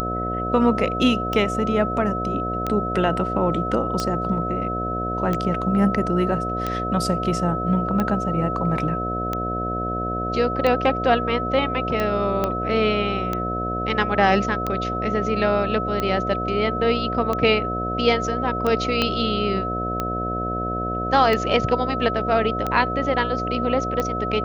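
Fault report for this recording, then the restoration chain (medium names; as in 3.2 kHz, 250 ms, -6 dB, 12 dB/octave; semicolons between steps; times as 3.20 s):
buzz 60 Hz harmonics 12 -28 dBFS
tick 45 rpm -11 dBFS
whine 1.3 kHz -26 dBFS
12.44 s: pop -9 dBFS
19.02 s: pop -7 dBFS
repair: de-click; de-hum 60 Hz, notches 12; band-stop 1.3 kHz, Q 30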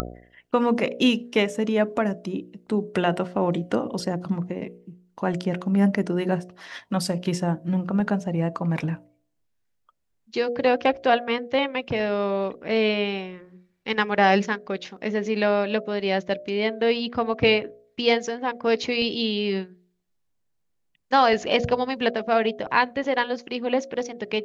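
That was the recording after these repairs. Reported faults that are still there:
12.44 s: pop
19.02 s: pop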